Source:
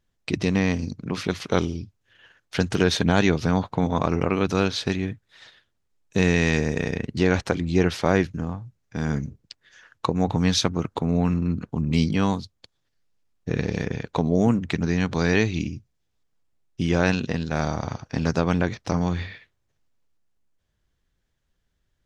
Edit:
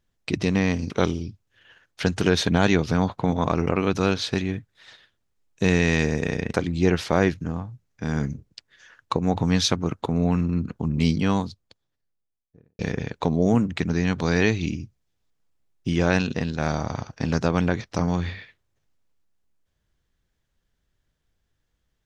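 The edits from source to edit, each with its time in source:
0.90–1.44 s: delete
7.08–7.47 s: delete
12.15–13.72 s: studio fade out

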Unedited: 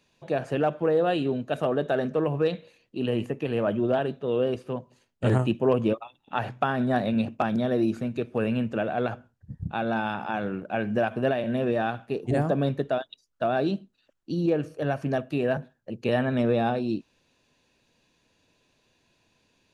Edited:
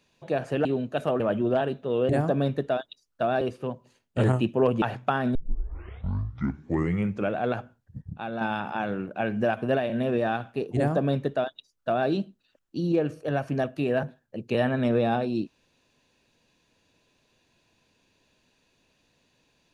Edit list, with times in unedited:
0.65–1.21 s: delete
1.76–3.58 s: delete
5.88–6.36 s: delete
6.89 s: tape start 2.01 s
9.56–9.95 s: gain -5.5 dB
12.30–13.62 s: copy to 4.47 s

